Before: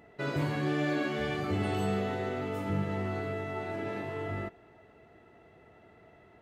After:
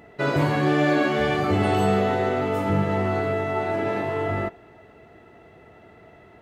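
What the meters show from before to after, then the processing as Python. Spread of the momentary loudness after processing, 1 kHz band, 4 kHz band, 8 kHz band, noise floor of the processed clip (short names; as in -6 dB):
5 LU, +12.5 dB, +8.5 dB, n/a, -51 dBFS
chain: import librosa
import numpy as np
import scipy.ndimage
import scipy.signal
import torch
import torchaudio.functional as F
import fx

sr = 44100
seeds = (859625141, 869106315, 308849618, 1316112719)

y = fx.dynamic_eq(x, sr, hz=800.0, q=0.77, threshold_db=-44.0, ratio=4.0, max_db=5)
y = y * 10.0 ** (8.0 / 20.0)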